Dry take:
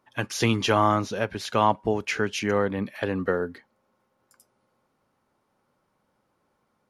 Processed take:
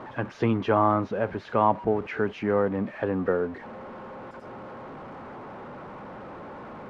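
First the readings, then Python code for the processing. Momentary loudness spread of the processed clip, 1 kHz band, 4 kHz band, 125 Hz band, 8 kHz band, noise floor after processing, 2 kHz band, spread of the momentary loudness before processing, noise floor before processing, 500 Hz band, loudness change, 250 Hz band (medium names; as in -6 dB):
18 LU, -0.5 dB, under -10 dB, -1.5 dB, under -20 dB, -44 dBFS, -5.0 dB, 8 LU, -73 dBFS, +1.0 dB, -0.5 dB, +0.5 dB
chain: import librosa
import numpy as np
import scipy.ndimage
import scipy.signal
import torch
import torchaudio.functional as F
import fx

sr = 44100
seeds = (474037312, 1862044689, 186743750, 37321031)

y = x + 0.5 * 10.0 ** (-32.5 / 20.0) * np.sign(x)
y = scipy.signal.sosfilt(scipy.signal.butter(2, 1300.0, 'lowpass', fs=sr, output='sos'), y)
y = fx.low_shelf(y, sr, hz=89.0, db=-8.0)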